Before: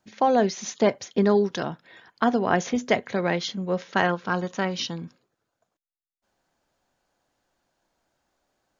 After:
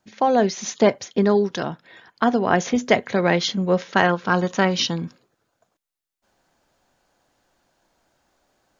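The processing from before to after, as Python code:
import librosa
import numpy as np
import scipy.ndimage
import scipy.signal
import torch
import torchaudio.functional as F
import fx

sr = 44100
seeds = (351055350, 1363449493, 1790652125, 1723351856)

y = fx.rider(x, sr, range_db=10, speed_s=0.5)
y = y * librosa.db_to_amplitude(4.5)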